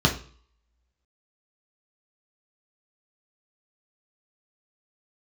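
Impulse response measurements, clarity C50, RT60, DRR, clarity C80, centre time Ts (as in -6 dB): 11.0 dB, 0.45 s, -0.5 dB, 16.5 dB, 17 ms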